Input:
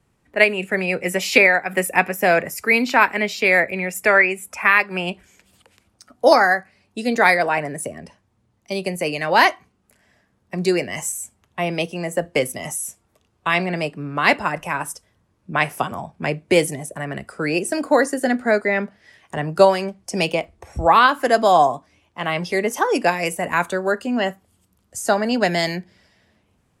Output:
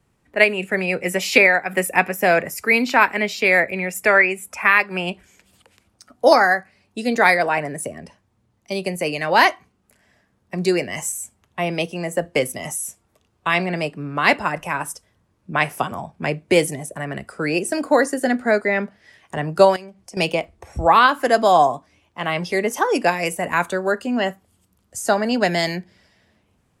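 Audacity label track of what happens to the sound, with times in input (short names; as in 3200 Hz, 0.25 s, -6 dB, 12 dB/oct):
19.760000	20.170000	compressor 2.5:1, threshold -41 dBFS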